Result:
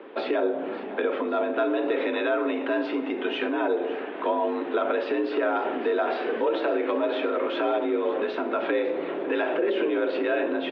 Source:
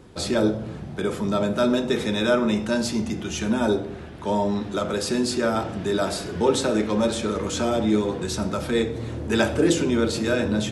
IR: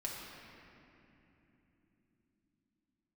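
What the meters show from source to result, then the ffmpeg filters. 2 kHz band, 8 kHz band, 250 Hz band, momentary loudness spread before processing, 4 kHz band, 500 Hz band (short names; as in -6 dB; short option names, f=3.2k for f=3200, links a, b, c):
-0.5 dB, under -35 dB, -6.0 dB, 6 LU, -8.0 dB, -0.5 dB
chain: -filter_complex "[0:a]alimiter=limit=-17.5dB:level=0:latency=1:release=84,acompressor=threshold=-29dB:ratio=3,highpass=f=250:t=q:w=0.5412,highpass=f=250:t=q:w=1.307,lowpass=f=3k:t=q:w=0.5176,lowpass=f=3k:t=q:w=0.7071,lowpass=f=3k:t=q:w=1.932,afreqshift=54,asplit=2[a][b];[b]aecho=0:1:554|1108|1662|2216|2770:0.158|0.0903|0.0515|0.0294|0.0167[c];[a][c]amix=inputs=2:normalize=0,volume=7.5dB"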